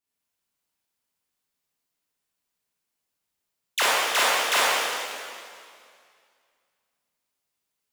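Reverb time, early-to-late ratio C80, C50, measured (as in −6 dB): 2.2 s, −2.0 dB, −5.0 dB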